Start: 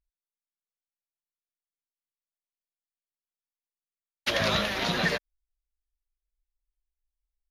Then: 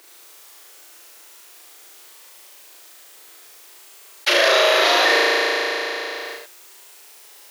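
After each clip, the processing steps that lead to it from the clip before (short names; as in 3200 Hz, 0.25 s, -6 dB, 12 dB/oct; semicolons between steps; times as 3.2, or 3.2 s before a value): steep high-pass 310 Hz 96 dB/oct; on a send: flutter echo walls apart 6.3 m, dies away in 1.3 s; on the sum: fast leveller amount 70%; gain +5.5 dB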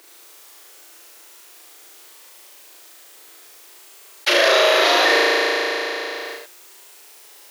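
low shelf 190 Hz +10.5 dB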